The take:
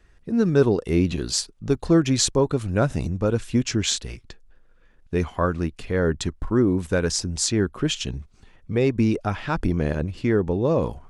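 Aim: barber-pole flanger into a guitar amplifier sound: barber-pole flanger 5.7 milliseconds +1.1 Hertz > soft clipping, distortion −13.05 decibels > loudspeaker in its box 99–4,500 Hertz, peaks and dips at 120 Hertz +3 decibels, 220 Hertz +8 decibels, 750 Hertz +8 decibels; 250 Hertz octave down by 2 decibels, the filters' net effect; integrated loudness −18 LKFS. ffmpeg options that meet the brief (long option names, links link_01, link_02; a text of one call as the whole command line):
ffmpeg -i in.wav -filter_complex "[0:a]equalizer=frequency=250:width_type=o:gain=-7.5,asplit=2[link_01][link_02];[link_02]adelay=5.7,afreqshift=1.1[link_03];[link_01][link_03]amix=inputs=2:normalize=1,asoftclip=threshold=-22dB,highpass=99,equalizer=frequency=120:width_type=q:width=4:gain=3,equalizer=frequency=220:width_type=q:width=4:gain=8,equalizer=frequency=750:width_type=q:width=4:gain=8,lowpass=frequency=4500:width=0.5412,lowpass=frequency=4500:width=1.3066,volume=12.5dB" out.wav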